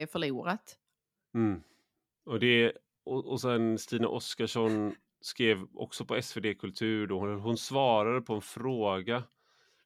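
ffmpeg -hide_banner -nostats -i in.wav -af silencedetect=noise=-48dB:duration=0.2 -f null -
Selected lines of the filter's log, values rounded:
silence_start: 0.73
silence_end: 1.34 | silence_duration: 0.62
silence_start: 1.62
silence_end: 2.27 | silence_duration: 0.65
silence_start: 2.77
silence_end: 3.07 | silence_duration: 0.30
silence_start: 4.95
silence_end: 5.24 | silence_duration: 0.28
silence_start: 9.25
silence_end: 9.85 | silence_duration: 0.61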